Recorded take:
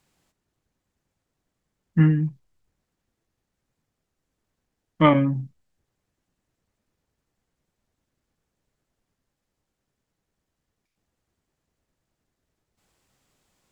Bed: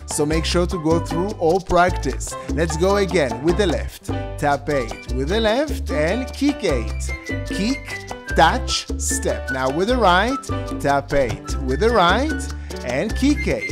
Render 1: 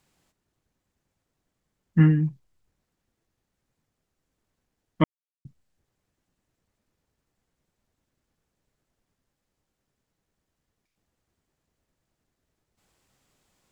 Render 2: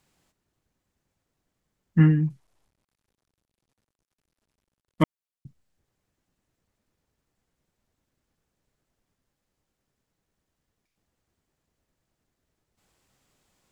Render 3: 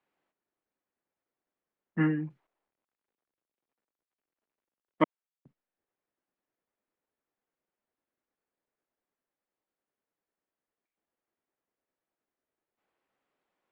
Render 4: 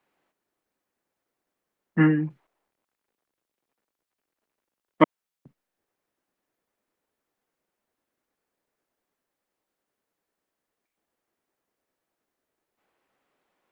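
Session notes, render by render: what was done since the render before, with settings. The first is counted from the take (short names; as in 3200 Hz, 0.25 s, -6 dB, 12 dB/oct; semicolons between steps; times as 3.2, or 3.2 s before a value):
5.04–5.45 mute
2.3–5.03 CVSD 64 kbps
gate -48 dBFS, range -8 dB; three-band isolator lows -21 dB, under 260 Hz, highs -23 dB, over 2900 Hz
gain +7.5 dB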